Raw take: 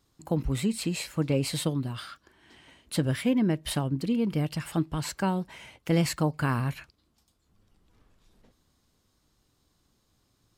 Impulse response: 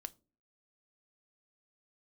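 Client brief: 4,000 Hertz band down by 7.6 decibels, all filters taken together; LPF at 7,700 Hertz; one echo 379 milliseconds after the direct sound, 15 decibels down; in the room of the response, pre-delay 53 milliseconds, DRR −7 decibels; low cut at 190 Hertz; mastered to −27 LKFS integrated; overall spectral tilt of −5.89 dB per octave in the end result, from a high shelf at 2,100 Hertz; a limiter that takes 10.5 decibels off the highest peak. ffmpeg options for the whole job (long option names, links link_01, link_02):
-filter_complex "[0:a]highpass=190,lowpass=7700,highshelf=frequency=2100:gain=-4.5,equalizer=frequency=4000:width_type=o:gain=-5,alimiter=limit=-24dB:level=0:latency=1,aecho=1:1:379:0.178,asplit=2[link_01][link_02];[1:a]atrim=start_sample=2205,adelay=53[link_03];[link_02][link_03]afir=irnorm=-1:irlink=0,volume=11.5dB[link_04];[link_01][link_04]amix=inputs=2:normalize=0,volume=0.5dB"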